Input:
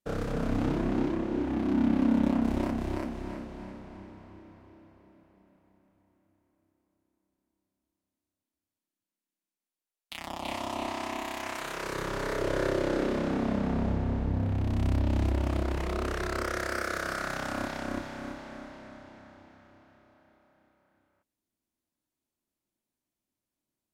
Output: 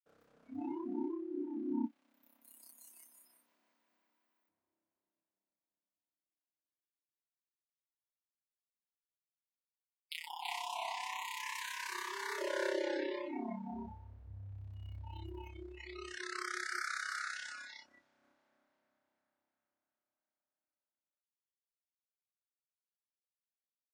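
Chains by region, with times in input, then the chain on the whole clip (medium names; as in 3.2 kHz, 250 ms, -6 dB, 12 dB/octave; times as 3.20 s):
1.86–4.49 s: tilt EQ +4 dB/octave + compression 2:1, threshold -44 dBFS + feedback delay 184 ms, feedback 36%, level -4 dB
15.49–18.23 s: low-pass 9.7 kHz + peaking EQ 940 Hz -2.5 dB 2.9 oct
whole clip: spectral noise reduction 29 dB; high-pass 550 Hz 6 dB/octave; trim -2 dB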